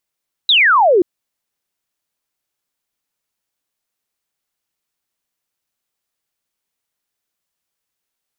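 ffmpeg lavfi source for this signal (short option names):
-f lavfi -i "aevalsrc='0.398*clip(t/0.002,0,1)*clip((0.53-t)/0.002,0,1)*sin(2*PI*4000*0.53/log(330/4000)*(exp(log(330/4000)*t/0.53)-1))':d=0.53:s=44100"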